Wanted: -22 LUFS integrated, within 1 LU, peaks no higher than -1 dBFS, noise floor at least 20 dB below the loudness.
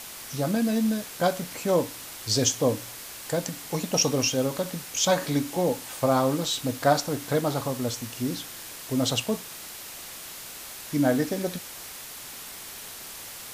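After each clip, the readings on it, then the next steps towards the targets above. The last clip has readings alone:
noise floor -41 dBFS; noise floor target -47 dBFS; loudness -26.5 LUFS; peak level -7.5 dBFS; loudness target -22.0 LUFS
-> noise print and reduce 6 dB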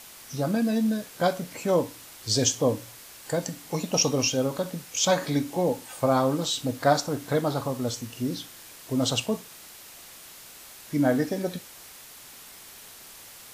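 noise floor -47 dBFS; loudness -26.5 LUFS; peak level -7.5 dBFS; loudness target -22.0 LUFS
-> trim +4.5 dB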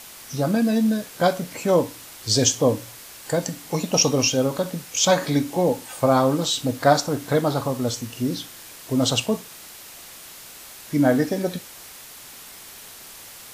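loudness -22.0 LUFS; peak level -3.0 dBFS; noise floor -42 dBFS

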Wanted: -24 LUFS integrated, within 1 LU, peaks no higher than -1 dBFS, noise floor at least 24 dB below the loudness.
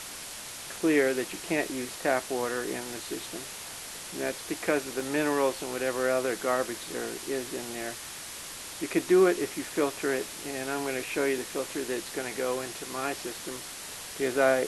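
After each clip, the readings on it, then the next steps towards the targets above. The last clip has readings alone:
dropouts 1; longest dropout 3.2 ms; noise floor -41 dBFS; noise floor target -55 dBFS; loudness -30.5 LUFS; peak level -11.0 dBFS; loudness target -24.0 LUFS
-> interpolate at 5.00 s, 3.2 ms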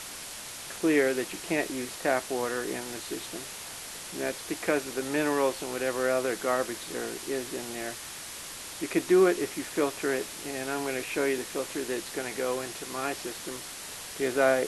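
dropouts 0; noise floor -41 dBFS; noise floor target -55 dBFS
-> noise reduction 14 dB, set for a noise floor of -41 dBFS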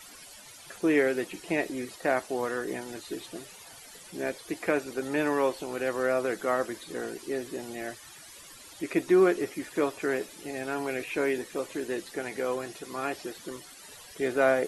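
noise floor -49 dBFS; noise floor target -54 dBFS
-> noise reduction 6 dB, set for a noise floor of -49 dBFS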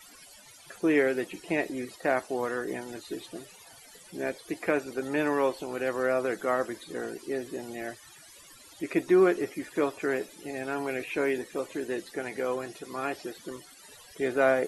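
noise floor -52 dBFS; noise floor target -55 dBFS
-> noise reduction 6 dB, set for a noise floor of -52 dBFS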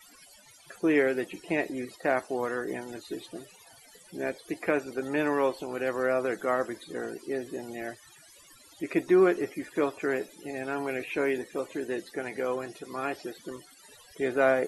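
noise floor -55 dBFS; loudness -30.5 LUFS; peak level -11.5 dBFS; loudness target -24.0 LUFS
-> trim +6.5 dB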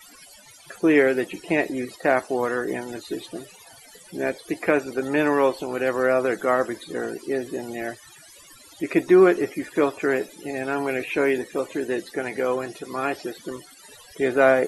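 loudness -24.0 LUFS; peak level -5.0 dBFS; noise floor -49 dBFS

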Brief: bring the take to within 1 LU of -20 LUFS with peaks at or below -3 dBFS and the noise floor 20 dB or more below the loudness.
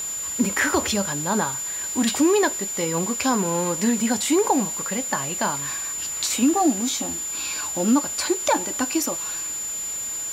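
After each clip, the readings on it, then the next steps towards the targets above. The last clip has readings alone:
steady tone 7.1 kHz; tone level -27 dBFS; noise floor -30 dBFS; noise floor target -43 dBFS; loudness -22.5 LUFS; peak level -8.0 dBFS; loudness target -20.0 LUFS
-> band-stop 7.1 kHz, Q 30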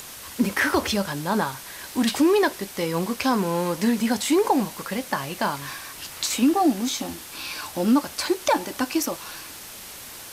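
steady tone not found; noise floor -40 dBFS; noise floor target -44 dBFS
-> noise reduction 6 dB, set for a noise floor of -40 dBFS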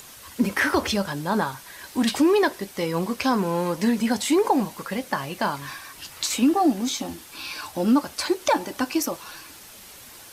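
noise floor -45 dBFS; loudness -24.0 LUFS; peak level -9.5 dBFS; loudness target -20.0 LUFS
-> trim +4 dB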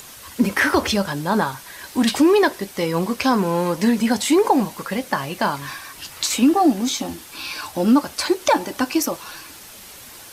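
loudness -20.0 LUFS; peak level -5.5 dBFS; noise floor -41 dBFS

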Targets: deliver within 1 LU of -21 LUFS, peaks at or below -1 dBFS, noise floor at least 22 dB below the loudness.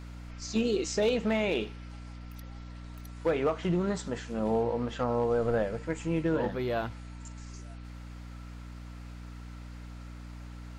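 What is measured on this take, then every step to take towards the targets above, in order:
clipped samples 0.3%; clipping level -20.0 dBFS; hum 60 Hz; highest harmonic 300 Hz; hum level -41 dBFS; loudness -30.5 LUFS; peak level -20.0 dBFS; loudness target -21.0 LUFS
-> clip repair -20 dBFS; de-hum 60 Hz, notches 5; trim +9.5 dB

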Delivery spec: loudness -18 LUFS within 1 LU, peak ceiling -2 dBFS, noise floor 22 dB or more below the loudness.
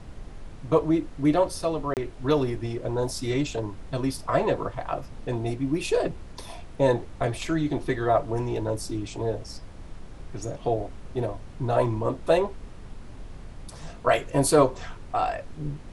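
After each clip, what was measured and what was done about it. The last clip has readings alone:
dropouts 1; longest dropout 28 ms; noise floor -43 dBFS; noise floor target -49 dBFS; loudness -27.0 LUFS; peak level -6.0 dBFS; loudness target -18.0 LUFS
-> interpolate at 1.94 s, 28 ms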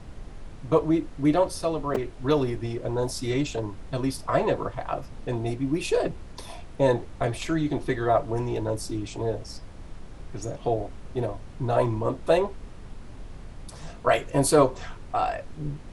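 dropouts 0; noise floor -43 dBFS; noise floor target -49 dBFS
-> noise print and reduce 6 dB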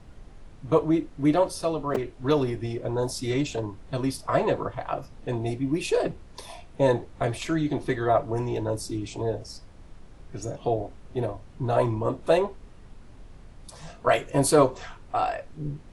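noise floor -48 dBFS; noise floor target -49 dBFS
-> noise print and reduce 6 dB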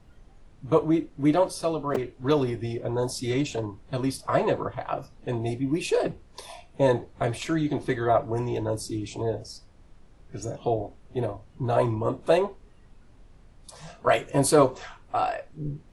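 noise floor -53 dBFS; loudness -27.0 LUFS; peak level -6.5 dBFS; loudness target -18.0 LUFS
-> trim +9 dB; peak limiter -2 dBFS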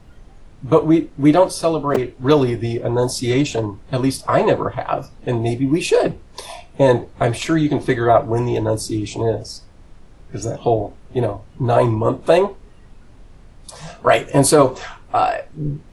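loudness -18.5 LUFS; peak level -2.0 dBFS; noise floor -44 dBFS

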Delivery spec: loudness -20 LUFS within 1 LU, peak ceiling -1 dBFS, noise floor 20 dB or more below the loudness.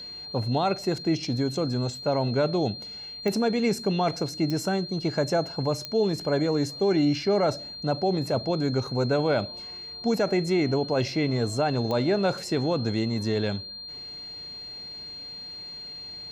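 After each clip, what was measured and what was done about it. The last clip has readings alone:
clicks found 4; steady tone 4.2 kHz; tone level -37 dBFS; loudness -27.0 LUFS; peak level -14.5 dBFS; loudness target -20.0 LUFS
-> de-click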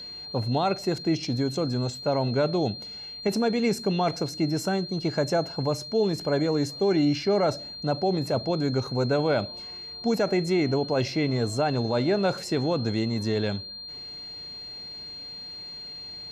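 clicks found 0; steady tone 4.2 kHz; tone level -37 dBFS
-> band-stop 4.2 kHz, Q 30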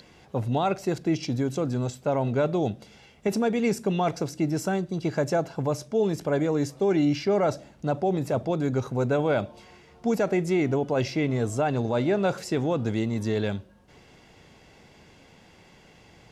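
steady tone not found; loudness -26.5 LUFS; peak level -15.5 dBFS; loudness target -20.0 LUFS
-> trim +6.5 dB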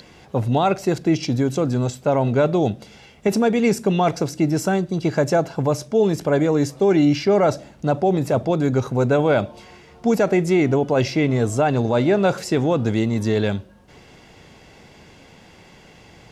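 loudness -20.0 LUFS; peak level -9.0 dBFS; noise floor -48 dBFS

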